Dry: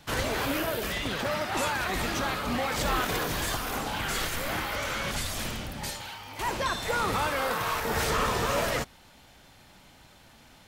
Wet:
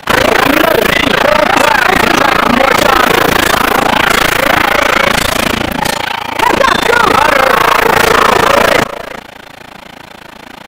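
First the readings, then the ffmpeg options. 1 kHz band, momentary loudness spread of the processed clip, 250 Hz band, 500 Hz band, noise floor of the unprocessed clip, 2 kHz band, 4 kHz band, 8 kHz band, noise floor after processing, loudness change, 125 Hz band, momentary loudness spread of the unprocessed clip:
+21.5 dB, 6 LU, +20.0 dB, +21.0 dB, −55 dBFS, +22.0 dB, +19.5 dB, +15.5 dB, −33 dBFS, +20.5 dB, +14.0 dB, 7 LU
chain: -filter_complex "[0:a]acrossover=split=190 3100:gain=0.224 1 0.2[link_01][link_02][link_03];[link_01][link_02][link_03]amix=inputs=3:normalize=0,asplit=2[link_04][link_05];[link_05]aeval=exprs='clip(val(0),-1,0.01)':channel_layout=same,volume=-3.5dB[link_06];[link_04][link_06]amix=inputs=2:normalize=0,highshelf=frequency=6600:gain=6,asplit=2[link_07][link_08];[link_08]aecho=0:1:369:0.106[link_09];[link_07][link_09]amix=inputs=2:normalize=0,tremolo=f=28:d=1,apsyclip=27.5dB,volume=-1.5dB"

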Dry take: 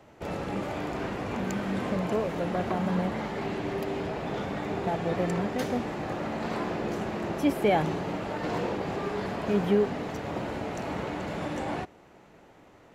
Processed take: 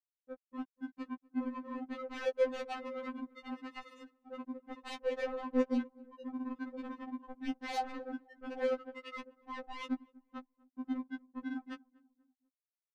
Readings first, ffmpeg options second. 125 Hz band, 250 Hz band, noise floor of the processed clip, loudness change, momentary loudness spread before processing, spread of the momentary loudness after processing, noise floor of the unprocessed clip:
below −35 dB, −9.0 dB, below −85 dBFS, −9.5 dB, 8 LU, 16 LU, −55 dBFS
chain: -filter_complex "[0:a]lowpass=1600,afftfilt=real='re*gte(hypot(re,im),0.2)':imag='im*gte(hypot(re,im),0.2)':win_size=1024:overlap=0.75,afftdn=noise_reduction=15:noise_floor=-54,highpass=43,areverse,acompressor=threshold=-42dB:ratio=6,areverse,acrusher=bits=6:mix=0:aa=0.5,asoftclip=type=tanh:threshold=-38.5dB,asplit=2[link_01][link_02];[link_02]adelay=244,lowpass=frequency=940:poles=1,volume=-23dB,asplit=2[link_03][link_04];[link_04]adelay=244,lowpass=frequency=940:poles=1,volume=0.52,asplit=2[link_05][link_06];[link_06]adelay=244,lowpass=frequency=940:poles=1,volume=0.52[link_07];[link_03][link_05][link_07]amix=inputs=3:normalize=0[link_08];[link_01][link_08]amix=inputs=2:normalize=0,afftfilt=real='re*3.46*eq(mod(b,12),0)':imag='im*3.46*eq(mod(b,12),0)':win_size=2048:overlap=0.75,volume=14dB"

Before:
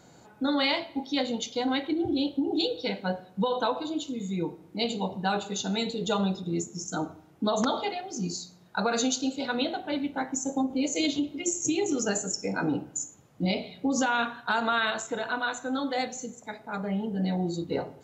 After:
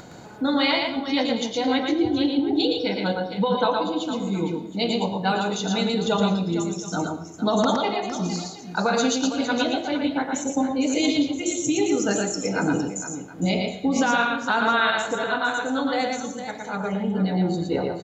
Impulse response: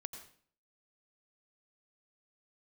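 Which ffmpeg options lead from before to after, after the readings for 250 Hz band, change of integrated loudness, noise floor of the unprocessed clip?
+6.0 dB, +5.5 dB, −55 dBFS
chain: -filter_complex "[0:a]acompressor=mode=upward:threshold=-40dB:ratio=2.5,aecho=1:1:115|459|720:0.668|0.282|0.112,asplit=2[link_01][link_02];[1:a]atrim=start_sample=2205,lowpass=5600[link_03];[link_02][link_03]afir=irnorm=-1:irlink=0,volume=-0.5dB[link_04];[link_01][link_04]amix=inputs=2:normalize=0"

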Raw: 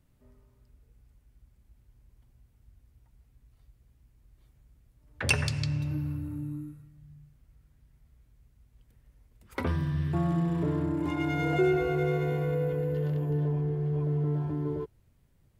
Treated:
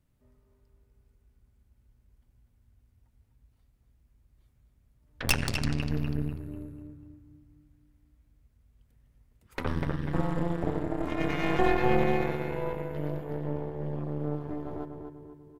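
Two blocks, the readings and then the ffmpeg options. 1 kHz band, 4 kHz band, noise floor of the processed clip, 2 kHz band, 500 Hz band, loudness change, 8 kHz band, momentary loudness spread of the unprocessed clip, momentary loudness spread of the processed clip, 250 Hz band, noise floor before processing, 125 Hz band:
+4.5 dB, +1.5 dB, −68 dBFS, +0.5 dB, −0.5 dB, −1.5 dB, +1.5 dB, 10 LU, 16 LU, −1.0 dB, −66 dBFS, −4.5 dB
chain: -filter_complex "[0:a]asplit=2[link_01][link_02];[link_02]adelay=246,lowpass=frequency=2400:poles=1,volume=-4dB,asplit=2[link_03][link_04];[link_04]adelay=246,lowpass=frequency=2400:poles=1,volume=0.54,asplit=2[link_05][link_06];[link_06]adelay=246,lowpass=frequency=2400:poles=1,volume=0.54,asplit=2[link_07][link_08];[link_08]adelay=246,lowpass=frequency=2400:poles=1,volume=0.54,asplit=2[link_09][link_10];[link_10]adelay=246,lowpass=frequency=2400:poles=1,volume=0.54,asplit=2[link_11][link_12];[link_12]adelay=246,lowpass=frequency=2400:poles=1,volume=0.54,asplit=2[link_13][link_14];[link_14]adelay=246,lowpass=frequency=2400:poles=1,volume=0.54[link_15];[link_01][link_03][link_05][link_07][link_09][link_11][link_13][link_15]amix=inputs=8:normalize=0,aeval=exprs='0.376*(cos(1*acos(clip(val(0)/0.376,-1,1)))-cos(1*PI/2))+0.0531*(cos(3*acos(clip(val(0)/0.376,-1,1)))-cos(3*PI/2))+0.0841*(cos(6*acos(clip(val(0)/0.376,-1,1)))-cos(6*PI/2))':channel_layout=same"

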